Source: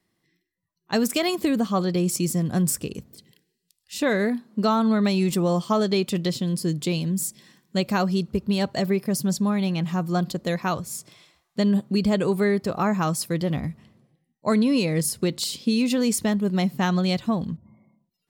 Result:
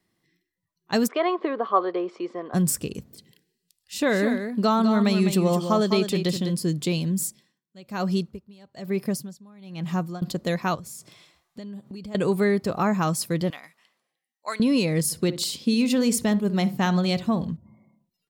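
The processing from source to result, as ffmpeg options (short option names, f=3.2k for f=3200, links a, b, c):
-filter_complex "[0:a]asplit=3[a][b][c];[a]afade=t=out:st=1.07:d=0.02[d];[b]highpass=f=370:w=0.5412,highpass=f=370:w=1.3066,equalizer=f=410:t=q:w=4:g=6,equalizer=f=690:t=q:w=4:g=3,equalizer=f=1.1k:t=q:w=4:g=10,equalizer=f=2.6k:t=q:w=4:g=-7,lowpass=f=2.8k:w=0.5412,lowpass=f=2.8k:w=1.3066,afade=t=in:st=1.07:d=0.02,afade=t=out:st=2.53:d=0.02[e];[c]afade=t=in:st=2.53:d=0.02[f];[d][e][f]amix=inputs=3:normalize=0,asplit=3[g][h][i];[g]afade=t=out:st=3.97:d=0.02[j];[h]aecho=1:1:204:0.398,afade=t=in:st=3.97:d=0.02,afade=t=out:st=6.5:d=0.02[k];[i]afade=t=in:st=6.5:d=0.02[l];[j][k][l]amix=inputs=3:normalize=0,asettb=1/sr,asplit=3[m][n][o];[m]atrim=end=7.224[p];[n]atrim=start=7.22:end=10.22,asetpts=PTS-STARTPTS,afade=t=in:d=0.004:c=qsin,afade=t=out:st=2.996:d=0.004:c=qsin,aeval=exprs='val(0)*pow(10,-27*(0.5-0.5*cos(2*PI*1.1*n/s))/20)':c=same[q];[o]atrim=start=10.216[r];[p][q]acrossfade=d=0.004:c1=hsin:c2=qsin[s];[s][r]acrossfade=d=0.004:c1=qsin:c2=hsin,asettb=1/sr,asplit=3[t][u][v];[t]atrim=end=10.754[w];[u]atrim=start=10.75:end=12.15,asetpts=PTS-STARTPTS,afade=t=in:d=0.004:c=qsin,afade=t=out:st=1.396:d=0.004:c=qsin,acompressor=threshold=-36dB:ratio=6:attack=3.2:release=140:knee=1:detection=peak[x];[v]atrim=start=12.146[y];[w][x]acrossfade=d=0.004:c1=hsin:c2=qsin[z];[z][y]acrossfade=d=0.004:c1=qsin:c2=hsin,asettb=1/sr,asplit=3[aa][ab][ac];[aa]atrim=end=13.504[ad];[ab]atrim=start=13.5:end=14.6,asetpts=PTS-STARTPTS,afade=t=in:d=0.004:c=qsin,afade=t=out:st=1.096:d=0.004:c=qsin,highpass=1.1k[ae];[ac]atrim=start=14.596[af];[ad][ae]acrossfade=d=0.004:c1=hsin:c2=qsin[ag];[ag][af]acrossfade=d=0.004:c1=qsin:c2=hsin,asplit=3[ah][ai][aj];[ah]afade=t=out:st=15.1:d=0.02[ak];[ai]asplit=2[al][am];[am]adelay=62,lowpass=f=1.1k:p=1,volume=-12dB,asplit=2[an][ao];[ao]adelay=62,lowpass=f=1.1k:p=1,volume=0.3,asplit=2[ap][aq];[aq]adelay=62,lowpass=f=1.1k:p=1,volume=0.3[ar];[al][an][ap][ar]amix=inputs=4:normalize=0,afade=t=in:st=15.1:d=0.02,afade=t=out:st=17.49:d=0.02[as];[aj]afade=t=in:st=17.49:d=0.02[at];[ak][as][at]amix=inputs=3:normalize=0"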